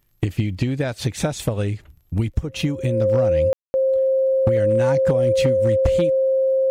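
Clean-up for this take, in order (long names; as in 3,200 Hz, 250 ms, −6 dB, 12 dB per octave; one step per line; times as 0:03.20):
clipped peaks rebuilt −10.5 dBFS
click removal
notch filter 530 Hz, Q 30
ambience match 0:03.53–0:03.74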